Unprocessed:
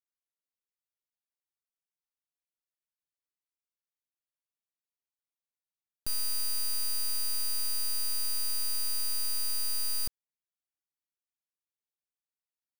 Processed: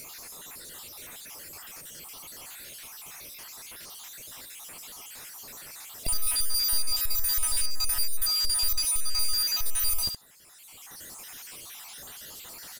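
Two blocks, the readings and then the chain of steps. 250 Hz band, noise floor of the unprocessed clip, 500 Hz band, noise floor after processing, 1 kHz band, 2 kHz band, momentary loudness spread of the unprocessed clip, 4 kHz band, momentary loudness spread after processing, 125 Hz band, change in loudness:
+5.5 dB, below −85 dBFS, +7.0 dB, −49 dBFS, +9.0 dB, +8.0 dB, 2 LU, +6.5 dB, 17 LU, can't be measured, +4.5 dB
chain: time-frequency cells dropped at random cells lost 53%
high-shelf EQ 11,000 Hz +4 dB
in parallel at −2 dB: brickwall limiter −28.5 dBFS, peak gain reduction 7 dB
on the sum: upward compression, threshold −45 dBFS
on a send: ambience of single reflections 12 ms −12 dB, 72 ms −15 dB
on the sum: downsampling to 32,000 Hz
power curve on the samples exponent 0.5

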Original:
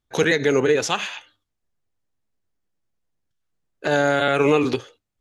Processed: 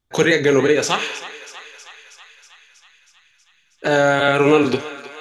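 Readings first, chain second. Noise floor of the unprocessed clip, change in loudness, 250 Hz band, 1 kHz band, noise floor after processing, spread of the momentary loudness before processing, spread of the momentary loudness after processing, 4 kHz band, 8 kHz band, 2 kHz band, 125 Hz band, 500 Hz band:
−80 dBFS, +3.5 dB, +3.5 dB, +4.0 dB, −60 dBFS, 12 LU, 18 LU, +3.5 dB, +4.0 dB, +3.5 dB, +3.0 dB, +3.5 dB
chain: feedback echo with a high-pass in the loop 320 ms, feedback 72%, high-pass 690 Hz, level −14 dB
pitch vibrato 1.4 Hz 8.6 cents
flutter between parallel walls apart 6.3 metres, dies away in 0.21 s
level +3 dB

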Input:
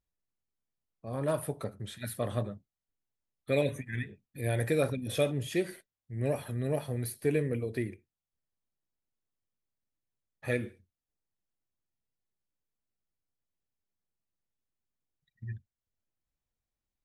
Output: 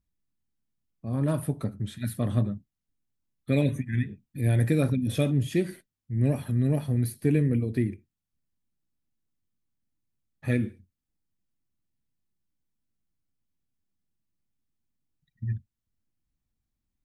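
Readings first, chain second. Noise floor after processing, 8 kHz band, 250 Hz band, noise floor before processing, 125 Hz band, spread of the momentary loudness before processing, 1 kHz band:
below −85 dBFS, 0.0 dB, +9.0 dB, below −85 dBFS, +9.5 dB, 14 LU, −1.0 dB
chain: low shelf with overshoot 350 Hz +8.5 dB, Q 1.5

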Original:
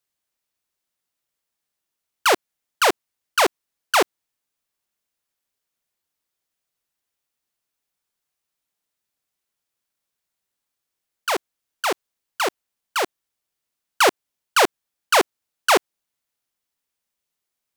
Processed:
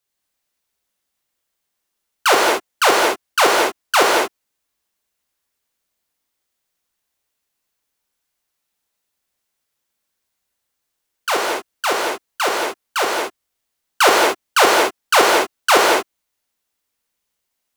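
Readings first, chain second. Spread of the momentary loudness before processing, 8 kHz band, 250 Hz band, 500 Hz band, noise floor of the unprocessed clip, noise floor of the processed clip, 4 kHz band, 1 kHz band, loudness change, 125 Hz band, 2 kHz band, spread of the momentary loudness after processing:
8 LU, +6.0 dB, +5.5 dB, +6.0 dB, −83 dBFS, −77 dBFS, +5.5 dB, +6.0 dB, +5.0 dB, can't be measured, +6.5 dB, 10 LU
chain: reverb whose tail is shaped and stops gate 260 ms flat, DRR −2.5 dB
level +1.5 dB

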